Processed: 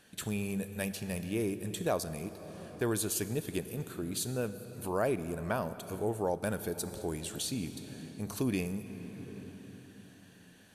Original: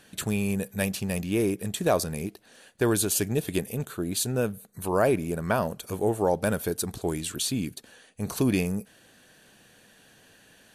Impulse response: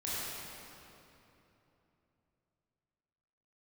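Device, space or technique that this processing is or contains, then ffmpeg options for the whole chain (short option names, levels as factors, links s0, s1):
ducked reverb: -filter_complex "[0:a]asplit=3[s0][s1][s2];[1:a]atrim=start_sample=2205[s3];[s1][s3]afir=irnorm=-1:irlink=0[s4];[s2]apad=whole_len=474020[s5];[s4][s5]sidechaincompress=threshold=0.0316:ratio=10:attack=9.3:release=878,volume=0.501[s6];[s0][s6]amix=inputs=2:normalize=0,volume=0.376"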